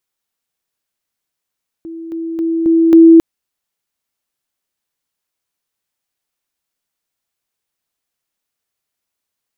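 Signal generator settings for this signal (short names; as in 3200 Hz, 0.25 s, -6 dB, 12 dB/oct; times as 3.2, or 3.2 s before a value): level ladder 329 Hz -25.5 dBFS, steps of 6 dB, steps 5, 0.27 s 0.00 s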